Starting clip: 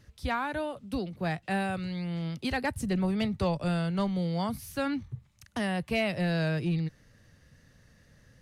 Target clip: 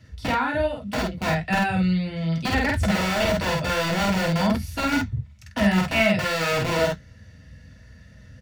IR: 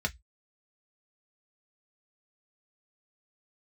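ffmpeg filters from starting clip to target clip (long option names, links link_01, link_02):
-filter_complex "[0:a]acrossover=split=580[link_01][link_02];[link_01]aeval=exprs='(mod(23.7*val(0)+1,2)-1)/23.7':channel_layout=same[link_03];[link_03][link_02]amix=inputs=2:normalize=0,asplit=2[link_04][link_05];[link_05]adelay=49,volume=-2dB[link_06];[link_04][link_06]amix=inputs=2:normalize=0[link_07];[1:a]atrim=start_sample=2205[link_08];[link_07][link_08]afir=irnorm=-1:irlink=0"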